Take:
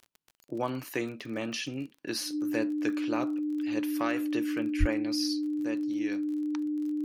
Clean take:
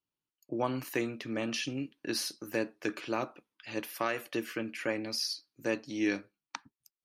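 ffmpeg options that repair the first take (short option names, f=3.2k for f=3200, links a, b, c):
-filter_complex "[0:a]adeclick=t=4,bandreject=f=300:w=30,asplit=3[a][b][c];[a]afade=t=out:st=4.79:d=0.02[d];[b]highpass=f=140:w=0.5412,highpass=f=140:w=1.3066,afade=t=in:st=4.79:d=0.02,afade=t=out:st=4.91:d=0.02[e];[c]afade=t=in:st=4.91:d=0.02[f];[d][e][f]amix=inputs=3:normalize=0,asetnsamples=n=441:p=0,asendcmd='5.52 volume volume 6.5dB',volume=0dB"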